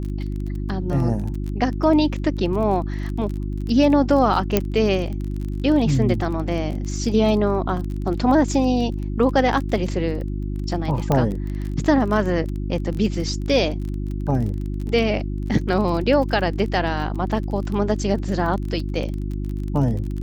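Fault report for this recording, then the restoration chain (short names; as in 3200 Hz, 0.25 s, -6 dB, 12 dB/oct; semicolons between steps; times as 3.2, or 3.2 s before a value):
crackle 26/s -28 dBFS
hum 50 Hz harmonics 7 -26 dBFS
4.57 pop -3 dBFS
11.12 pop -8 dBFS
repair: de-click; de-hum 50 Hz, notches 7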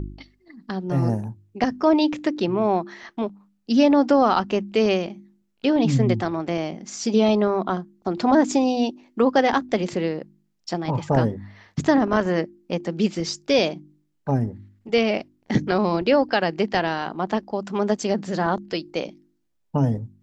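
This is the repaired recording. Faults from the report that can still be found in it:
none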